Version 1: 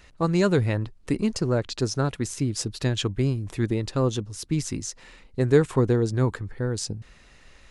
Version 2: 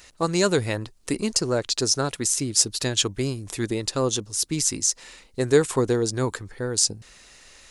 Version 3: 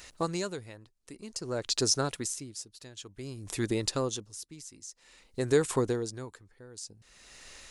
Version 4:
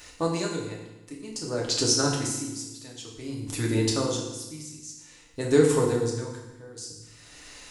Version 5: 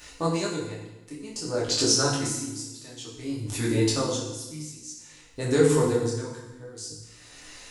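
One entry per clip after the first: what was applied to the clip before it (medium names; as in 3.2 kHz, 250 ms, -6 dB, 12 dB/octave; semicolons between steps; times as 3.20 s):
tone controls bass -8 dB, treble +12 dB; trim +2 dB
compression 1.5:1, threshold -30 dBFS, peak gain reduction 6.5 dB; logarithmic tremolo 0.53 Hz, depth 20 dB
FDN reverb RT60 1 s, low-frequency decay 1.3×, high-frequency decay 0.95×, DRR -2.5 dB
detune thickener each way 20 cents; trim +4.5 dB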